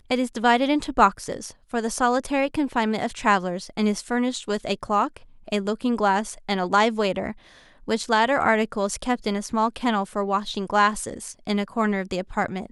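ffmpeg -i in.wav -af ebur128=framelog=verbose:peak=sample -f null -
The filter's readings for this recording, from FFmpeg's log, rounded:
Integrated loudness:
  I:         -23.7 LUFS
  Threshold: -33.9 LUFS
Loudness range:
  LRA:         2.1 LU
  Threshold: -44.0 LUFS
  LRA low:   -24.9 LUFS
  LRA high:  -22.9 LUFS
Sample peak:
  Peak:       -3.4 dBFS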